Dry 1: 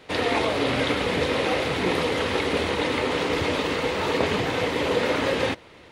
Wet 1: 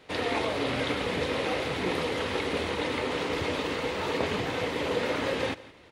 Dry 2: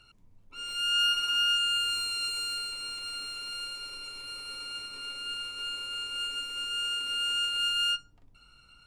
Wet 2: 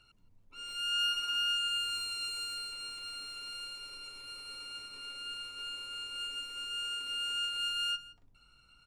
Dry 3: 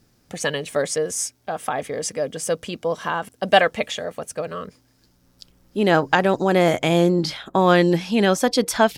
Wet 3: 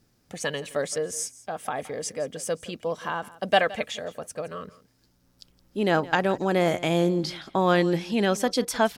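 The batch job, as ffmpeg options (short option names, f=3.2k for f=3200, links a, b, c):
-af "aecho=1:1:168:0.112,volume=-5.5dB"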